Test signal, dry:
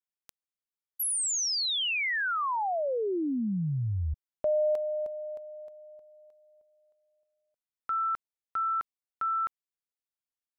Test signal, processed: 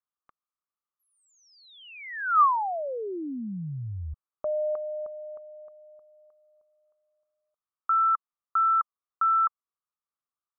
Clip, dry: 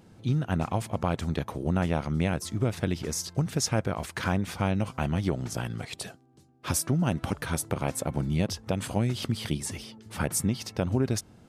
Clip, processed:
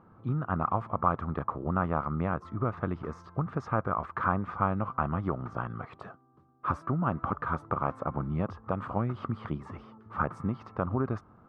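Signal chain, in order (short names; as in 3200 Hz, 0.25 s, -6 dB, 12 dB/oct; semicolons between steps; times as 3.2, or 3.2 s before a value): synth low-pass 1200 Hz, resonance Q 7.7; gain -4.5 dB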